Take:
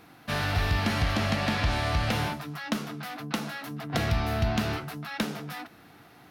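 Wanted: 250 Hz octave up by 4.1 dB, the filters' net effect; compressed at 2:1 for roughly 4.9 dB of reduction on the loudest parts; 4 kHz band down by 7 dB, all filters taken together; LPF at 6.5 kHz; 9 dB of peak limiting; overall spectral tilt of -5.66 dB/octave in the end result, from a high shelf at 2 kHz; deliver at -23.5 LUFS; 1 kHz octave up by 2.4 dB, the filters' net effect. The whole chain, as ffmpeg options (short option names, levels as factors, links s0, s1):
-af "lowpass=6500,equalizer=f=250:t=o:g=5,equalizer=f=1000:t=o:g=4.5,highshelf=f=2000:g=-5.5,equalizer=f=4000:t=o:g=-3.5,acompressor=threshold=0.0355:ratio=2,volume=3.55,alimiter=limit=0.211:level=0:latency=1"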